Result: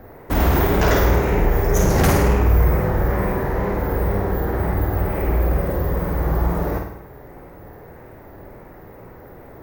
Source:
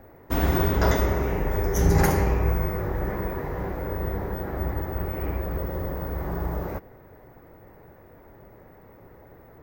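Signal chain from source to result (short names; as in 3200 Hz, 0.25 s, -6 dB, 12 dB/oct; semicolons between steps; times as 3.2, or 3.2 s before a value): sine folder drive 9 dB, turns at -7.5 dBFS; wow and flutter 71 cents; flutter echo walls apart 8.8 m, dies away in 0.67 s; gain -6 dB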